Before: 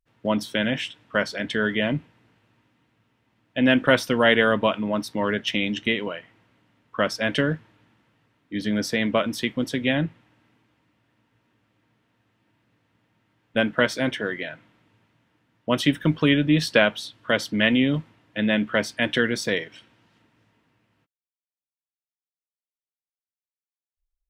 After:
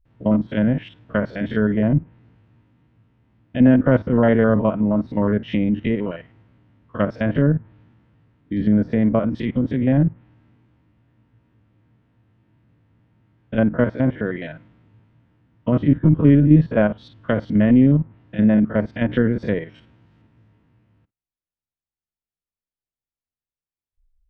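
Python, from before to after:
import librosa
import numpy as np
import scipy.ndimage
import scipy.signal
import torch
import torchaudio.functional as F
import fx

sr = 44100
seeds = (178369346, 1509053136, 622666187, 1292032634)

y = fx.spec_steps(x, sr, hold_ms=50)
y = fx.riaa(y, sr, side='playback')
y = fx.env_lowpass_down(y, sr, base_hz=1300.0, full_db=-16.5)
y = F.gain(torch.from_numpy(y), 1.0).numpy()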